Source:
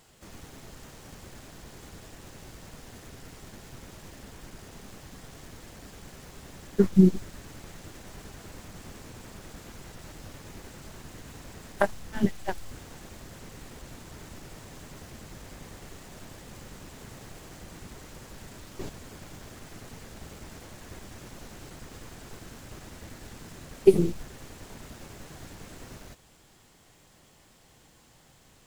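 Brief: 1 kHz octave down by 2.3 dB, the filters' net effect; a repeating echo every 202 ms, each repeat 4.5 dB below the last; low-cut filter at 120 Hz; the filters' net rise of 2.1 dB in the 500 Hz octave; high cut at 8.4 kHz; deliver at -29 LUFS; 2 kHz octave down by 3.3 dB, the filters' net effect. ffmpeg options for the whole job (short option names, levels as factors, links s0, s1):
-af "highpass=120,lowpass=8400,equalizer=f=500:t=o:g=4,equalizer=f=1000:t=o:g=-4,equalizer=f=2000:t=o:g=-3,aecho=1:1:202|404|606|808|1010|1212|1414|1616|1818:0.596|0.357|0.214|0.129|0.0772|0.0463|0.0278|0.0167|0.01,volume=0.668"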